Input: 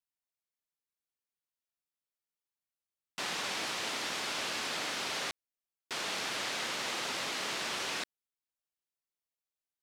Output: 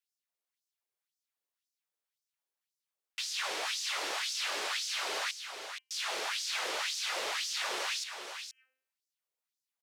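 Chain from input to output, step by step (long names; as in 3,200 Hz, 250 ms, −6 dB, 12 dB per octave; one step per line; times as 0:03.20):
one-sided soft clipper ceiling −29.5 dBFS
parametric band 250 Hz −5 dB 0.53 octaves
hum removal 260.8 Hz, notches 12
auto-filter high-pass sine 1.9 Hz 380–5,700 Hz
on a send: single-tap delay 473 ms −7.5 dB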